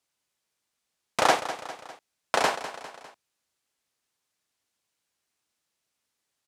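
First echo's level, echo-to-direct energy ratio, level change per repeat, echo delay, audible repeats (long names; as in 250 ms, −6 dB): −12.5 dB, −11.0 dB, −5.5 dB, 201 ms, 3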